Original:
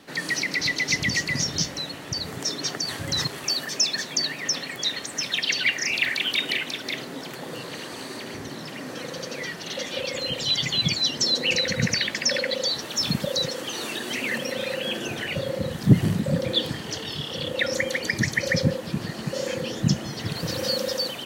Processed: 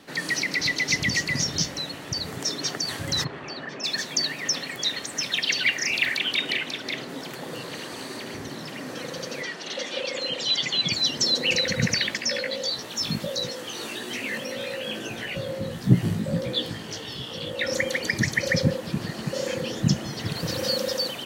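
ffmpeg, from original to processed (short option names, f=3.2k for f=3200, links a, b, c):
-filter_complex "[0:a]asplit=3[a][b][c];[a]afade=t=out:st=3.23:d=0.02[d];[b]lowpass=2.1k,afade=t=in:st=3.23:d=0.02,afade=t=out:st=3.83:d=0.02[e];[c]afade=t=in:st=3.83:d=0.02[f];[d][e][f]amix=inputs=3:normalize=0,asettb=1/sr,asplit=3[g][h][i];[g]atrim=end=6.184[j];[h]atrim=start=6.18:end=7.09,asetpts=PTS-STARTPTS,afade=t=in:d=0.004:c=qsin,afade=t=out:st=0.906:d=0.004:c=qsin,highshelf=f=10k:g=-10[k];[i]atrim=start=7.086[l];[j][k]acrossfade=d=0.004:c1=hsin:c2=qsin[m];[m][l]acrossfade=d=0.004:c1=qsin:c2=hsin,asettb=1/sr,asplit=3[n][o][p];[n]atrim=end=9.424[q];[o]atrim=start=9.42:end=10.92,asetpts=PTS-STARTPTS,afade=t=in:d=0.004:c=qsin,afade=t=out:st=1.496:d=0.004:c=qsin,highpass=240,lowpass=7.6k[r];[p]atrim=start=10.916[s];[q][r]acrossfade=d=0.004:c1=hsin:c2=qsin[t];[t][s]acrossfade=d=0.004:c1=qsin:c2=hsin,asettb=1/sr,asplit=3[u][v][w];[u]atrim=end=12.174[x];[v]atrim=start=12.17:end=17.67,asetpts=PTS-STARTPTS,afade=t=in:d=0.004:c=qsin,afade=t=out:st=5.496:d=0.004:c=qsin,flanger=delay=16:depth=2.8:speed=1.6[y];[w]atrim=start=17.666[z];[x][y]acrossfade=d=0.004:c1=hsin:c2=qsin[aa];[aa][z]acrossfade=d=0.004:c1=qsin:c2=hsin"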